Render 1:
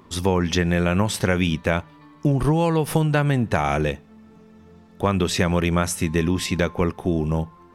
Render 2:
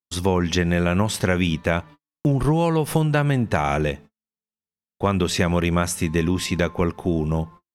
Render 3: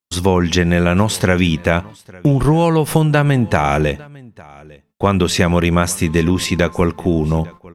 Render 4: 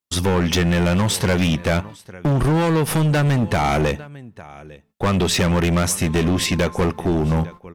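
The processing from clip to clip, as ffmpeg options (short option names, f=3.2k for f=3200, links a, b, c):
-af "agate=range=-55dB:threshold=-39dB:ratio=16:detection=peak"
-af "aecho=1:1:852:0.0668,volume=6dB"
-af "asoftclip=type=hard:threshold=-14.5dB"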